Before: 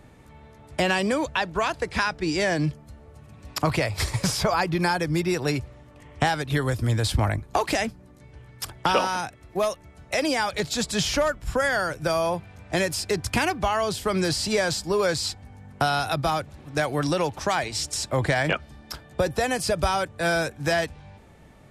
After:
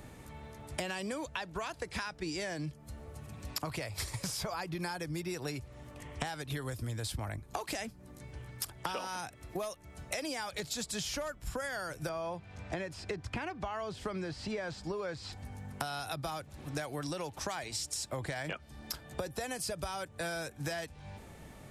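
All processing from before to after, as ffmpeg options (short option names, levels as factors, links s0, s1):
-filter_complex "[0:a]asettb=1/sr,asplit=3[s0][s1][s2];[s0]atrim=end=12.094[s3];[s1]atrim=start=12.09:end=15.33,asetpts=PTS-STARTPTS,afade=t=in:d=0.004:c=qsin,afade=t=out:st=3.236:d=0.004:c=qsin,lowpass=6200,acrossover=split=2700[s4][s5];[s5]acompressor=threshold=0.00501:ratio=4:attack=1:release=60[s6];[s4][s6]amix=inputs=2:normalize=0[s7];[s2]atrim=start=15.326[s8];[s3][s7]acrossfade=d=0.004:c1=hsin:c2=qsin[s9];[s9][s8]acrossfade=d=0.004:c1=qsin:c2=hsin,highshelf=f=6300:g=9,acompressor=threshold=0.0158:ratio=6"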